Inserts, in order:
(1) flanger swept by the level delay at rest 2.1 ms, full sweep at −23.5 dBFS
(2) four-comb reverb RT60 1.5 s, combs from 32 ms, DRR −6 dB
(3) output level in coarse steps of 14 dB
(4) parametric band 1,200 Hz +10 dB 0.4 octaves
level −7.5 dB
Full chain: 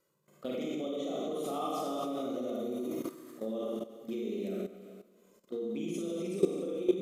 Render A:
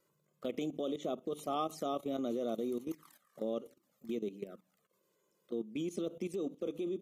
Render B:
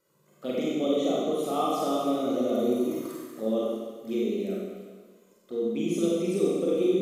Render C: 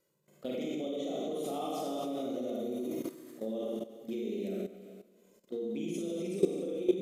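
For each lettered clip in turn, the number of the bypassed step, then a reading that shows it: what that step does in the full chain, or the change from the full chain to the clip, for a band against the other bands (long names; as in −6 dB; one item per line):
2, change in integrated loudness −3.0 LU
3, change in crest factor −7.0 dB
4, 1 kHz band −2.5 dB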